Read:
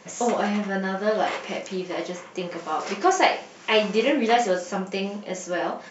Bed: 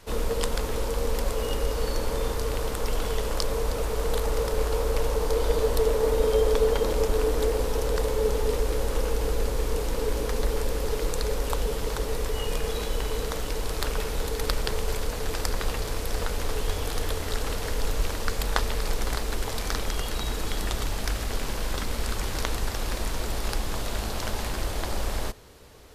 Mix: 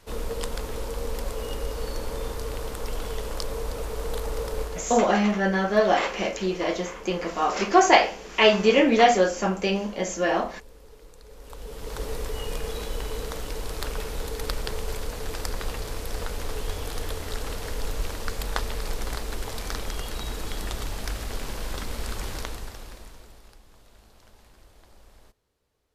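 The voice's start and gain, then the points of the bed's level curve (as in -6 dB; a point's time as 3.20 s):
4.70 s, +3.0 dB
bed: 4.61 s -4 dB
5.07 s -22 dB
11.23 s -22 dB
12.02 s -3 dB
22.31 s -3 dB
23.60 s -25 dB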